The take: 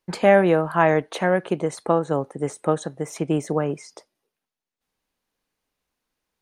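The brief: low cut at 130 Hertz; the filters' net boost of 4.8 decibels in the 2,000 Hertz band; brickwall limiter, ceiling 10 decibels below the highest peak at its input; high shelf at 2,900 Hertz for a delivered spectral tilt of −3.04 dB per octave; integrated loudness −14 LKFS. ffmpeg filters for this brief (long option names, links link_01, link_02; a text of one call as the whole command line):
ffmpeg -i in.wav -af "highpass=130,equalizer=frequency=2000:width_type=o:gain=8,highshelf=frequency=2900:gain=-6.5,volume=11dB,alimiter=limit=-1dB:level=0:latency=1" out.wav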